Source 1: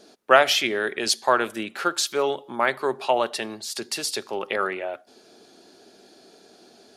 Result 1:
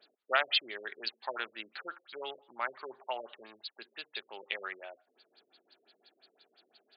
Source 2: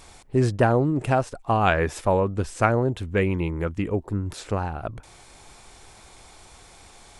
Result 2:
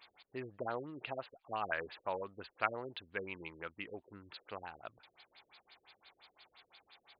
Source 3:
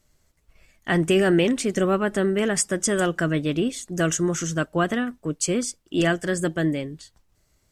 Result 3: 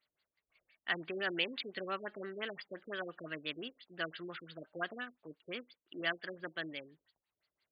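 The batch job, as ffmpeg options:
-af "aderivative,afftfilt=real='re*lt(b*sr/1024,550*pow(5000/550,0.5+0.5*sin(2*PI*5.8*pts/sr)))':imag='im*lt(b*sr/1024,550*pow(5000/550,0.5+0.5*sin(2*PI*5.8*pts/sr)))':win_size=1024:overlap=0.75,volume=4dB"

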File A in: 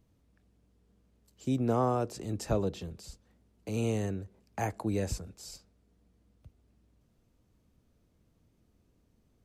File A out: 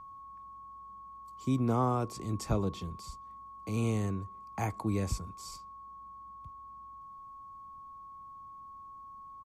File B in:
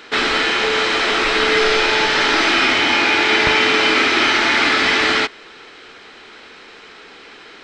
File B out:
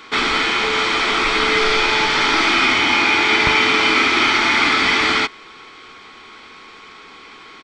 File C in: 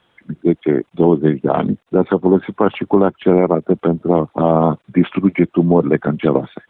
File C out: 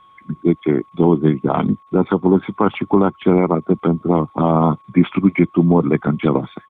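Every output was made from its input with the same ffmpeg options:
-af "aecho=1:1:0.9:0.41,aeval=exprs='val(0)+0.00562*sin(2*PI*1100*n/s)':c=same,volume=-1dB"

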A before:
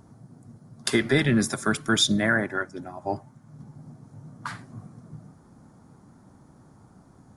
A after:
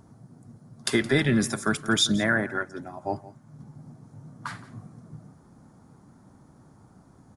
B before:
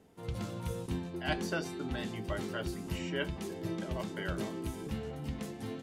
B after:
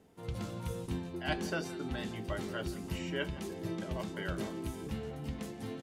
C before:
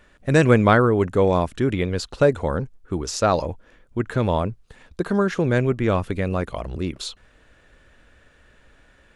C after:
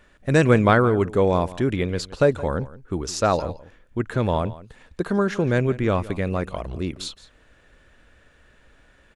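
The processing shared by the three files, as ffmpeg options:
-af "aecho=1:1:169:0.126,volume=-1dB"

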